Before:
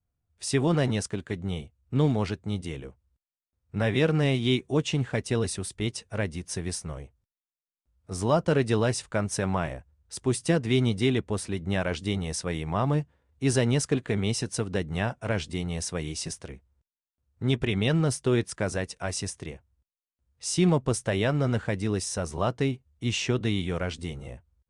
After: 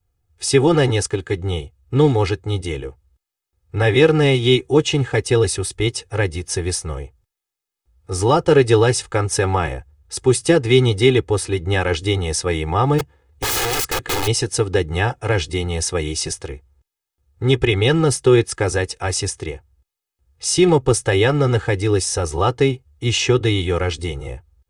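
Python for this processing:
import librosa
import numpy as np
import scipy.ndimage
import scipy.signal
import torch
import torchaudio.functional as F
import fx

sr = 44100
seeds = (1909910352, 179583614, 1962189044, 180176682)

y = fx.overflow_wrap(x, sr, gain_db=26.0, at=(12.98, 14.26), fade=0.02)
y = y + 0.98 * np.pad(y, (int(2.4 * sr / 1000.0), 0))[:len(y)]
y = F.gain(torch.from_numpy(y), 7.5).numpy()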